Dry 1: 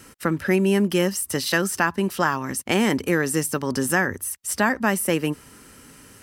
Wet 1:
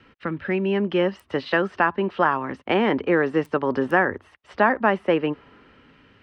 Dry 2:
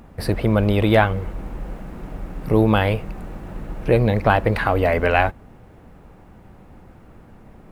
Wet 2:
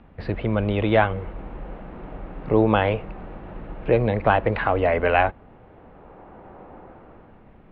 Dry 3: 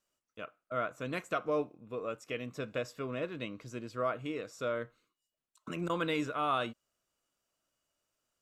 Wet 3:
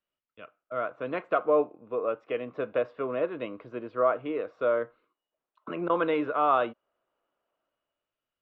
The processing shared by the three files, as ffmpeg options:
-filter_complex "[0:a]highshelf=f=4.6k:t=q:w=1.5:g=-12.5,acrossover=split=330|1300|5200[a][b][c][d];[b]dynaudnorm=f=130:g=13:m=16dB[e];[d]acrusher=bits=4:mix=0:aa=0.000001[f];[a][e][c][f]amix=inputs=4:normalize=0,volume=-5.5dB"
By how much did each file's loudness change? 0.0, -2.5, +7.0 LU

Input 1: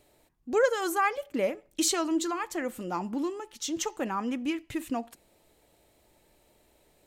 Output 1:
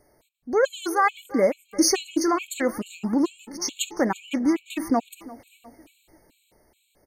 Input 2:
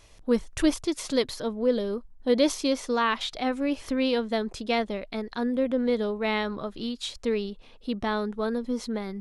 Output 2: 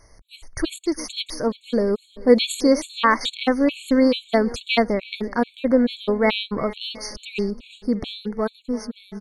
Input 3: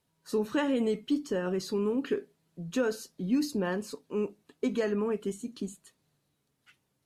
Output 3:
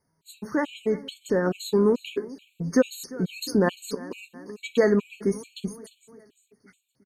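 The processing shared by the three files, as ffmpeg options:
-af "dynaudnorm=f=150:g=17:m=6.5dB,aecho=1:1:346|692|1038|1384:0.106|0.0572|0.0309|0.0167,afftfilt=real='re*gt(sin(2*PI*2.3*pts/sr)*(1-2*mod(floor(b*sr/1024/2200),2)),0)':imag='im*gt(sin(2*PI*2.3*pts/sr)*(1-2*mod(floor(b*sr/1024/2200),2)),0)':win_size=1024:overlap=0.75,volume=3.5dB"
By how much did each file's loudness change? +5.5, +5.5, +5.5 LU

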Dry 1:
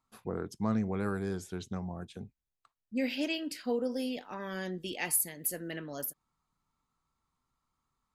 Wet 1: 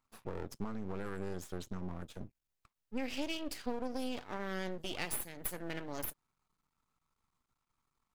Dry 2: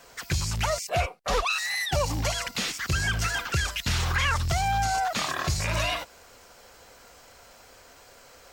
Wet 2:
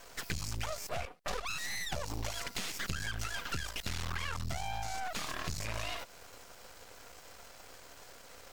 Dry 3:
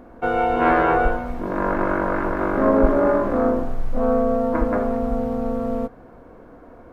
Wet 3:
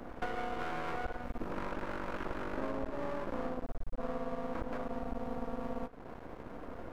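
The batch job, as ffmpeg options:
-af "acompressor=threshold=-33dB:ratio=12,aeval=exprs='max(val(0),0)':c=same,volume=2.5dB"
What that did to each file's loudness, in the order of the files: -6.5, -11.5, -19.0 LU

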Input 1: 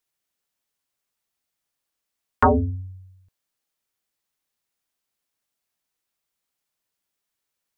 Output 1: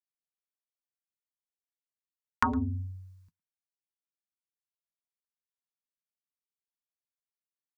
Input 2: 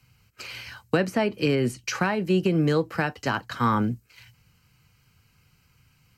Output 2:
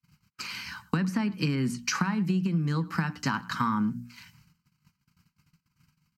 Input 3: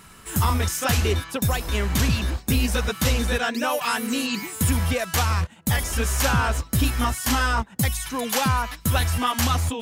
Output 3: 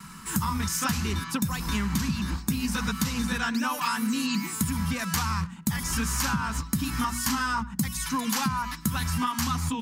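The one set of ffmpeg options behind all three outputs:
-filter_complex "[0:a]bandreject=f=60:t=h:w=6,bandreject=f=120:t=h:w=6,bandreject=f=180:t=h:w=6,bandreject=f=240:t=h:w=6,bandreject=f=300:t=h:w=6,agate=range=-30dB:threshold=-59dB:ratio=16:detection=peak,firequalizer=gain_entry='entry(110,0);entry(170,14);entry(410,-7);entry(630,-11);entry(960,7);entry(1700,3);entry(3300,0);entry(4700,6);entry(9700,2)':delay=0.05:min_phase=1,acompressor=threshold=-22dB:ratio=12,asplit=2[a][b];[b]adelay=110,highpass=300,lowpass=3.4k,asoftclip=type=hard:threshold=-15dB,volume=-20dB[c];[a][c]amix=inputs=2:normalize=0,volume=-1.5dB"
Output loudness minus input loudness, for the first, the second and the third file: -10.5, -4.0, -4.5 LU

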